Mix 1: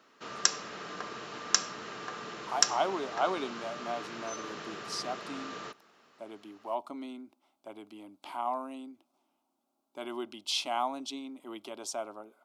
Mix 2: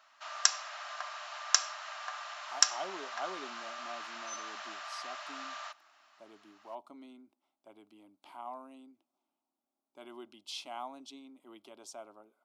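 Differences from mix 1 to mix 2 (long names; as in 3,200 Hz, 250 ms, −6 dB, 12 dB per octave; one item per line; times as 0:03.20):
speech −10.5 dB
background: add linear-phase brick-wall high-pass 580 Hz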